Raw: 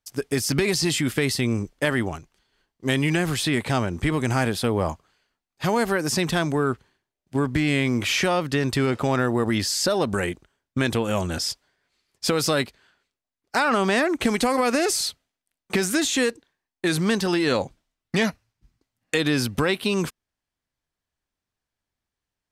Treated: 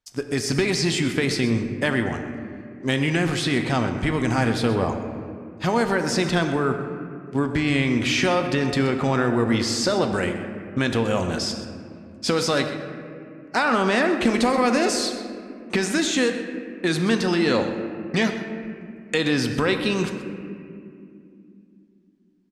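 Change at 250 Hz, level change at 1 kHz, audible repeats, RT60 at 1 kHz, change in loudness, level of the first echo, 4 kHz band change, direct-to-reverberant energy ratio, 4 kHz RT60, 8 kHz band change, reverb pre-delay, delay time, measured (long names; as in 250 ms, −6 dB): +2.0 dB, +1.5 dB, 1, 2.1 s, +0.5 dB, −14.5 dB, 0.0 dB, 5.5 dB, 1.4 s, −2.5 dB, 3 ms, 127 ms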